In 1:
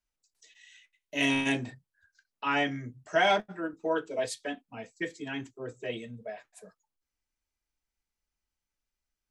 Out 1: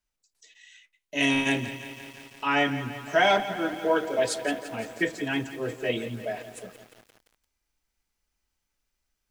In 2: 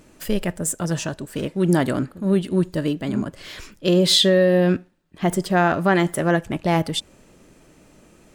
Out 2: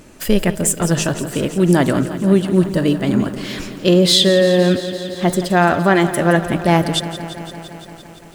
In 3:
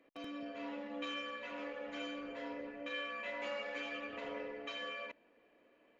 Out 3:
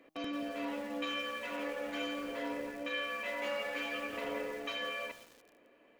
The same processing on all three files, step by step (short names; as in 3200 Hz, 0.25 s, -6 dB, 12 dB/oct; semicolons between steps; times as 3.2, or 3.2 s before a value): de-hum 157.5 Hz, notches 9; in parallel at 0 dB: vocal rider within 5 dB 0.5 s; on the sum: lo-fi delay 0.171 s, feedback 80%, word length 7-bit, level -13.5 dB; gain -1 dB